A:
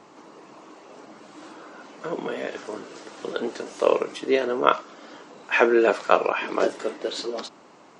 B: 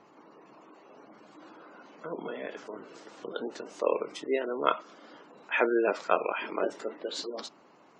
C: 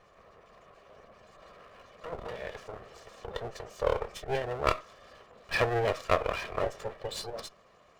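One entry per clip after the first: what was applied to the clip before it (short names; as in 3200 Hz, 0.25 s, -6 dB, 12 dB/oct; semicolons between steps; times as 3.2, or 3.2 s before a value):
spectral gate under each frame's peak -25 dB strong; dynamic EQ 5900 Hz, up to +5 dB, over -46 dBFS, Q 0.88; gain -7.5 dB
minimum comb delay 1.7 ms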